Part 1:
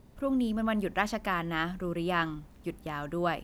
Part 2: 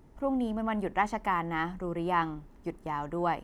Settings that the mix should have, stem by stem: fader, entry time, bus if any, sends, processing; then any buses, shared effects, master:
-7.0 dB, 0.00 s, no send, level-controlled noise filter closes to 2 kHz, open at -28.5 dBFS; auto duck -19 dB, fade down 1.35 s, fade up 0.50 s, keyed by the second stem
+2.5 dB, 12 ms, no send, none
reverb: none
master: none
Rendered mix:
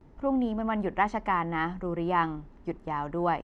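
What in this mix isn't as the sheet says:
stem 1 -7.0 dB -> -13.5 dB; master: extra distance through air 110 m

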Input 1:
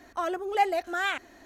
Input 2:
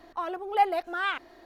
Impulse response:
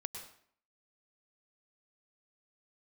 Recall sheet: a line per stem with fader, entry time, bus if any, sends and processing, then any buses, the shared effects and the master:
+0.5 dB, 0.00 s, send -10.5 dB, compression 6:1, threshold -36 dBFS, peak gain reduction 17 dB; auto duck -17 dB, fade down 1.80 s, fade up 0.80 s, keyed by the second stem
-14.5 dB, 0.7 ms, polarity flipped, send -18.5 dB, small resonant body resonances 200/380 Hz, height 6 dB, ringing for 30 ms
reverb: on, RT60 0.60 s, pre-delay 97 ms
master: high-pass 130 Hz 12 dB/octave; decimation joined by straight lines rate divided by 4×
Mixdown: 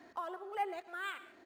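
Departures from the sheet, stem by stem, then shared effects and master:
stem 1 +0.5 dB -> -9.5 dB; reverb return +9.5 dB

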